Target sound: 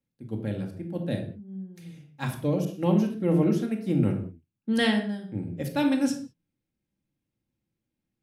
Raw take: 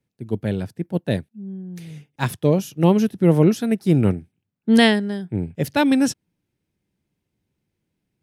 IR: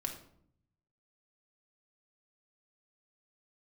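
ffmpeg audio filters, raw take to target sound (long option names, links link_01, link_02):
-filter_complex "[1:a]atrim=start_sample=2205,afade=type=out:start_time=0.26:duration=0.01,atrim=end_sample=11907[link_01];[0:a][link_01]afir=irnorm=-1:irlink=0,asettb=1/sr,asplit=3[link_02][link_03][link_04];[link_02]atrim=end=2.654[link_05];[link_03]atrim=start=2.65:end=4.02,asetpts=PTS-STARTPTS,afade=type=in:duration=0.004:curve=qsin,afade=type=out:start_time=1.366:duration=0.004:curve=qsin,adynamicequalizer=threshold=0.00891:dfrequency=3600:dqfactor=0.7:tfrequency=3600:tqfactor=0.7:attack=5:release=100:ratio=0.375:range=2.5:mode=cutabove:tftype=highshelf[link_06];[link_04]atrim=start=4.016[link_07];[link_05][link_06]acrossfade=duration=0.004:curve1=hsin:curve2=qsin[link_08];[link_08][link_07]acrossfade=duration=0.004:curve1=qsin:curve2=hsin,volume=-8.5dB"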